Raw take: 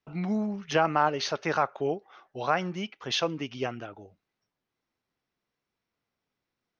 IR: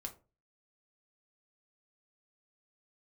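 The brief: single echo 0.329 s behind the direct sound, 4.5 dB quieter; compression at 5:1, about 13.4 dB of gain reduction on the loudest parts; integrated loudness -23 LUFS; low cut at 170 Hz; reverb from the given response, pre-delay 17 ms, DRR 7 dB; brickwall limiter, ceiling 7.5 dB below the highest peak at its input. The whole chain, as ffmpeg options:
-filter_complex "[0:a]highpass=170,acompressor=threshold=-34dB:ratio=5,alimiter=level_in=5dB:limit=-24dB:level=0:latency=1,volume=-5dB,aecho=1:1:329:0.596,asplit=2[a][b];[1:a]atrim=start_sample=2205,adelay=17[c];[b][c]afir=irnorm=-1:irlink=0,volume=-4dB[d];[a][d]amix=inputs=2:normalize=0,volume=16dB"

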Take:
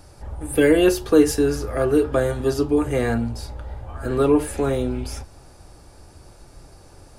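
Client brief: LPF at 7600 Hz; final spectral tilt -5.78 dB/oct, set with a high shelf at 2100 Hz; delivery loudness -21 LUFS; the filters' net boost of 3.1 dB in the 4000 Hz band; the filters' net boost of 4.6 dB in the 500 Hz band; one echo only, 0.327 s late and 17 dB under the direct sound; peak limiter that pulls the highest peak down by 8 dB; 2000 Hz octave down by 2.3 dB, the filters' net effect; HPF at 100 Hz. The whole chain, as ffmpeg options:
-af "highpass=100,lowpass=7.6k,equalizer=f=500:t=o:g=5.5,equalizer=f=2k:t=o:g=-6,highshelf=f=2.1k:g=3,equalizer=f=4k:t=o:g=3.5,alimiter=limit=-8dB:level=0:latency=1,aecho=1:1:327:0.141,volume=-2dB"

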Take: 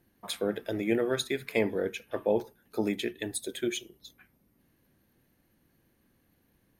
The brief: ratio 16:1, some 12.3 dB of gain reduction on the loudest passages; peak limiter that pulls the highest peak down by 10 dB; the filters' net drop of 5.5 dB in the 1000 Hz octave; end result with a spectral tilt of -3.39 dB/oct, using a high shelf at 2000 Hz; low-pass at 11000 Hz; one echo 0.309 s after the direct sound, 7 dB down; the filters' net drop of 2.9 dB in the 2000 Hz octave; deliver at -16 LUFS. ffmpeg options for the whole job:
-af "lowpass=11k,equalizer=f=1k:t=o:g=-8.5,highshelf=f=2k:g=8.5,equalizer=f=2k:t=o:g=-7,acompressor=threshold=-35dB:ratio=16,alimiter=level_in=7dB:limit=-24dB:level=0:latency=1,volume=-7dB,aecho=1:1:309:0.447,volume=26.5dB"

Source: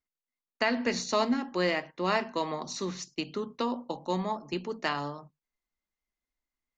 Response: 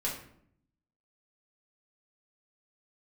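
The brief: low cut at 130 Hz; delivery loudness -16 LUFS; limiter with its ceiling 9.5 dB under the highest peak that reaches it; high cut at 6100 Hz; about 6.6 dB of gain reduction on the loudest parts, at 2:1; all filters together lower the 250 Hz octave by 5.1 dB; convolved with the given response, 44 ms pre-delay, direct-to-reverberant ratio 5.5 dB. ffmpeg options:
-filter_complex "[0:a]highpass=130,lowpass=6.1k,equalizer=f=250:t=o:g=-6,acompressor=threshold=-34dB:ratio=2,alimiter=level_in=1.5dB:limit=-24dB:level=0:latency=1,volume=-1.5dB,asplit=2[a][b];[1:a]atrim=start_sample=2205,adelay=44[c];[b][c]afir=irnorm=-1:irlink=0,volume=-10dB[d];[a][d]amix=inputs=2:normalize=0,volume=21.5dB"

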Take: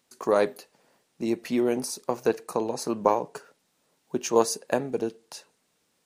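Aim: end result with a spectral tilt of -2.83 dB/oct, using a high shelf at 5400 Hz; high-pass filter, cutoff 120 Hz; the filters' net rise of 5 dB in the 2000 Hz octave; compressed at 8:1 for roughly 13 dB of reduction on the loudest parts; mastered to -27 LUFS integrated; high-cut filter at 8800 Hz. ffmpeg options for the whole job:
-af "highpass=120,lowpass=8.8k,equalizer=f=2k:t=o:g=5.5,highshelf=f=5.4k:g=8,acompressor=threshold=-28dB:ratio=8,volume=7.5dB"

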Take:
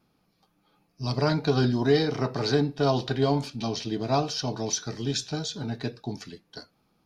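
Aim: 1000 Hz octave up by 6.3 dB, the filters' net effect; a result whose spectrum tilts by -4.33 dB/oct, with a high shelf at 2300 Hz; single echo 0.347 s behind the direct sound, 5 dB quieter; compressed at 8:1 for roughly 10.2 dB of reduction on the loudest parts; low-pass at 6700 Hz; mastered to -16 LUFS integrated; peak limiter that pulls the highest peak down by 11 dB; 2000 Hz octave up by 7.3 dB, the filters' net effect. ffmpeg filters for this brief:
-af "lowpass=6.7k,equalizer=f=1k:t=o:g=6.5,equalizer=f=2k:t=o:g=3.5,highshelf=f=2.3k:g=7.5,acompressor=threshold=-26dB:ratio=8,alimiter=level_in=1dB:limit=-24dB:level=0:latency=1,volume=-1dB,aecho=1:1:347:0.562,volume=18dB"

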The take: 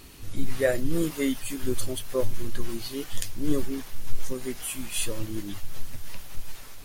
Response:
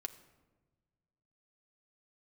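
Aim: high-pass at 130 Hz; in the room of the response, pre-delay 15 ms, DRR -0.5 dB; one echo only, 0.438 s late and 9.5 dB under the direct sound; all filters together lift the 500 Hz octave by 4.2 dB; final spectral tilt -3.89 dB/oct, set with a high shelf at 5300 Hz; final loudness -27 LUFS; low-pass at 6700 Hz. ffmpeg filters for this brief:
-filter_complex "[0:a]highpass=130,lowpass=6.7k,equalizer=f=500:t=o:g=5,highshelf=f=5.3k:g=9,aecho=1:1:438:0.335,asplit=2[a][b];[1:a]atrim=start_sample=2205,adelay=15[c];[b][c]afir=irnorm=-1:irlink=0,volume=3dB[d];[a][d]amix=inputs=2:normalize=0,volume=-2dB"

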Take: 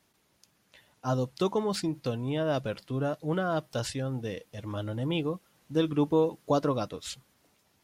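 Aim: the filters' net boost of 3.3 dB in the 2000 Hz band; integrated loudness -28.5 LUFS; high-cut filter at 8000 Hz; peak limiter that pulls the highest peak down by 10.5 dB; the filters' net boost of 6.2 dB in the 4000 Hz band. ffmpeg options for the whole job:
-af "lowpass=8k,equalizer=f=2k:t=o:g=3,equalizer=f=4k:t=o:g=7,volume=5dB,alimiter=limit=-18dB:level=0:latency=1"

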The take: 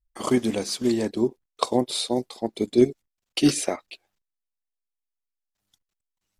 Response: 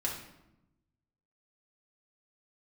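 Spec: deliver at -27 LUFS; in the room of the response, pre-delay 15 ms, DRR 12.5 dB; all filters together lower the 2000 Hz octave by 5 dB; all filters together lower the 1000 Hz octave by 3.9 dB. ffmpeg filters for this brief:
-filter_complex "[0:a]equalizer=f=1k:t=o:g=-4,equalizer=f=2k:t=o:g=-5.5,asplit=2[a][b];[1:a]atrim=start_sample=2205,adelay=15[c];[b][c]afir=irnorm=-1:irlink=0,volume=-16.5dB[d];[a][d]amix=inputs=2:normalize=0,volume=-1.5dB"

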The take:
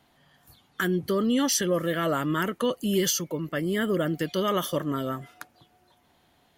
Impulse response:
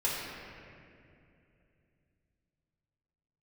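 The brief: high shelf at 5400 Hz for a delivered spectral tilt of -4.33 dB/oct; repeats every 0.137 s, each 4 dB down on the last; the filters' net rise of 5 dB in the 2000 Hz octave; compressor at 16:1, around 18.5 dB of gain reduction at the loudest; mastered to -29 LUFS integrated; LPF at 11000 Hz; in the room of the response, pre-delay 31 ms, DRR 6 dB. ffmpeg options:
-filter_complex "[0:a]lowpass=11k,equalizer=f=2k:t=o:g=7,highshelf=f=5.4k:g=-5.5,acompressor=threshold=-38dB:ratio=16,aecho=1:1:137|274|411|548|685|822|959|1096|1233:0.631|0.398|0.25|0.158|0.0994|0.0626|0.0394|0.0249|0.0157,asplit=2[a][b];[1:a]atrim=start_sample=2205,adelay=31[c];[b][c]afir=irnorm=-1:irlink=0,volume=-14dB[d];[a][d]amix=inputs=2:normalize=0,volume=10.5dB"

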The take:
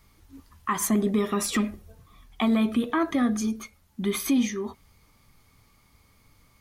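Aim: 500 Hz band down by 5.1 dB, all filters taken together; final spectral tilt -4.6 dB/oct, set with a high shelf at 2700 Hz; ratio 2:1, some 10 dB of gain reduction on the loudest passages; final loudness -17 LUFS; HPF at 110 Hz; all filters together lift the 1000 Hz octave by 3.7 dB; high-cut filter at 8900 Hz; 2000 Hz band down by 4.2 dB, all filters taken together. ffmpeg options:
-af "highpass=110,lowpass=8.9k,equalizer=f=500:t=o:g=-9,equalizer=f=1k:t=o:g=8.5,equalizer=f=2k:t=o:g=-5.5,highshelf=f=2.7k:g=-3.5,acompressor=threshold=-38dB:ratio=2,volume=19.5dB"

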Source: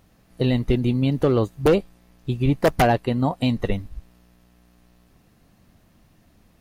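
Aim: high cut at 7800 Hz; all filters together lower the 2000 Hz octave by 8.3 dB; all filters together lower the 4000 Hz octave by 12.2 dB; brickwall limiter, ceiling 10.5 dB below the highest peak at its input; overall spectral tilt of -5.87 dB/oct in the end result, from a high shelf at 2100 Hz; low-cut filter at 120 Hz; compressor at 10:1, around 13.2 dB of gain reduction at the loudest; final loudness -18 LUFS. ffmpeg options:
-af "highpass=120,lowpass=7.8k,equalizer=f=2k:t=o:g=-6,highshelf=f=2.1k:g=-5,equalizer=f=4k:t=o:g=-9,acompressor=threshold=-28dB:ratio=10,volume=19dB,alimiter=limit=-8dB:level=0:latency=1"

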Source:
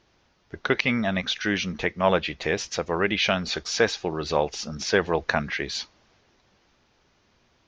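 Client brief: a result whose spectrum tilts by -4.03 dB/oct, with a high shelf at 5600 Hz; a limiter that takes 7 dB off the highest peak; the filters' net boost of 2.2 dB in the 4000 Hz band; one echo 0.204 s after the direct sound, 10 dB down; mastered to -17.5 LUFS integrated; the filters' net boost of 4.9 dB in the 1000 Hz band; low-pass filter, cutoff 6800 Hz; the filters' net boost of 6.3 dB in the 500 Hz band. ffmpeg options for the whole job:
-af "lowpass=6.8k,equalizer=f=500:t=o:g=6.5,equalizer=f=1k:t=o:g=4,equalizer=f=4k:t=o:g=4,highshelf=f=5.6k:g=-3,alimiter=limit=-8.5dB:level=0:latency=1,aecho=1:1:204:0.316,volume=6dB"

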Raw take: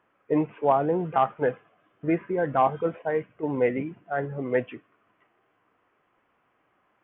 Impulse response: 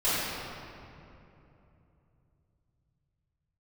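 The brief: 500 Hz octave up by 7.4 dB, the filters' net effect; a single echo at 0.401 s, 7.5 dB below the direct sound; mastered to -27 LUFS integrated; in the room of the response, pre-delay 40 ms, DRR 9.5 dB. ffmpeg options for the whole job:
-filter_complex "[0:a]equalizer=f=500:t=o:g=8.5,aecho=1:1:401:0.422,asplit=2[a][b];[1:a]atrim=start_sample=2205,adelay=40[c];[b][c]afir=irnorm=-1:irlink=0,volume=-23dB[d];[a][d]amix=inputs=2:normalize=0,volume=-6.5dB"

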